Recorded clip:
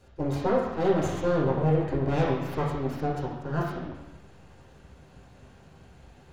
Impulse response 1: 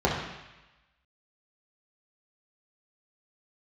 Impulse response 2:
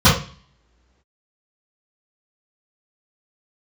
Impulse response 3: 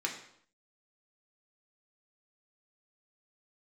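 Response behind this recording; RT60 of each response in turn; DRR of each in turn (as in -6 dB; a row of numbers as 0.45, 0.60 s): 1; 1.0 s, not exponential, 0.65 s; -5.0, -15.5, -0.5 dB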